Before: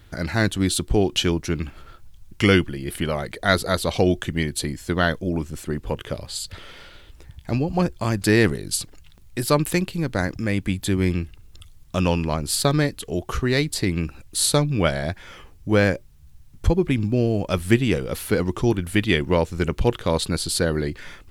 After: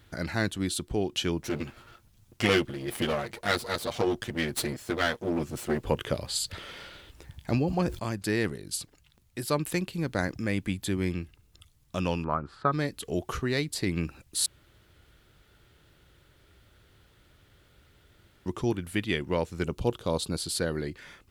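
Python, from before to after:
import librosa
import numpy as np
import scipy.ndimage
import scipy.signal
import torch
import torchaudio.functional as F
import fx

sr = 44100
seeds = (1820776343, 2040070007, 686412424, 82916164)

y = fx.lower_of_two(x, sr, delay_ms=8.5, at=(1.41, 5.84))
y = fx.sustainer(y, sr, db_per_s=35.0, at=(7.5, 7.99))
y = fx.lowpass_res(y, sr, hz=1300.0, q=4.9, at=(12.23, 12.71), fade=0.02)
y = fx.peak_eq(y, sr, hz=1900.0, db=-11.5, octaves=0.77, at=(19.65, 20.38))
y = fx.edit(y, sr, fx.room_tone_fill(start_s=14.46, length_s=4.0), tone=tone)
y = fx.rider(y, sr, range_db=10, speed_s=0.5)
y = fx.highpass(y, sr, hz=91.0, slope=6)
y = y * librosa.db_to_amplitude(-6.5)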